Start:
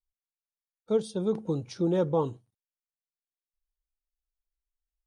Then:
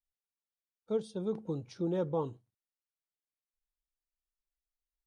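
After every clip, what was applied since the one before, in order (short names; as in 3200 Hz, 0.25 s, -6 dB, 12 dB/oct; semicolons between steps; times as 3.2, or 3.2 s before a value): high shelf 6000 Hz -6.5 dB; gain -6.5 dB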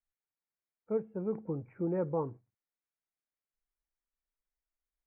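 steep low-pass 2400 Hz 96 dB/oct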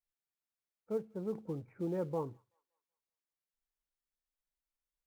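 in parallel at -10 dB: short-mantissa float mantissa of 2-bit; on the sum: thin delay 0.19 s, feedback 41%, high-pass 1500 Hz, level -23 dB; gain -6 dB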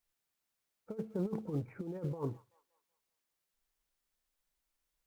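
negative-ratio compressor -40 dBFS, ratio -0.5; gain +4 dB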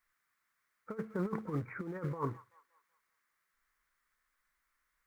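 band shelf 1500 Hz +14.5 dB 1.3 oct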